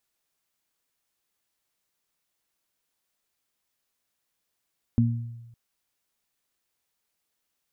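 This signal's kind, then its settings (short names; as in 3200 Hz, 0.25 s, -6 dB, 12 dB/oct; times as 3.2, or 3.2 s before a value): additive tone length 0.56 s, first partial 117 Hz, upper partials 0.5 dB, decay 1.10 s, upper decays 0.52 s, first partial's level -18 dB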